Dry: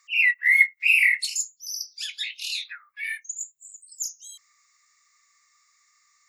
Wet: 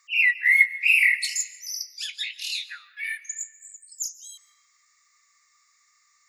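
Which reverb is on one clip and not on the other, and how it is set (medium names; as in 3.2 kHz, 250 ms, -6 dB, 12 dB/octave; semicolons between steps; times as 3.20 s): algorithmic reverb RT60 1.4 s, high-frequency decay 0.55×, pre-delay 100 ms, DRR 16.5 dB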